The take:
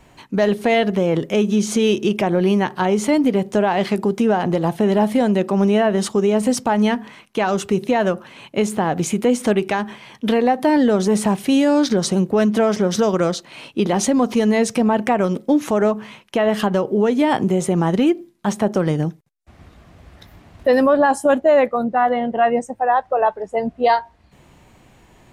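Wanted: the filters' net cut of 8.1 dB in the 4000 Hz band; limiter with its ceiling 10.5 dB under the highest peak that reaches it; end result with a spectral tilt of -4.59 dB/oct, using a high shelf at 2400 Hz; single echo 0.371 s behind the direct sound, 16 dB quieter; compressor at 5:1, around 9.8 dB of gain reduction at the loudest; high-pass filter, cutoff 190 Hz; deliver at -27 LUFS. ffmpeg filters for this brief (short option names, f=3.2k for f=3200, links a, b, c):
-af "highpass=190,highshelf=f=2.4k:g=-8,equalizer=f=4k:t=o:g=-4,acompressor=threshold=-23dB:ratio=5,alimiter=limit=-22dB:level=0:latency=1,aecho=1:1:371:0.158,volume=4.5dB"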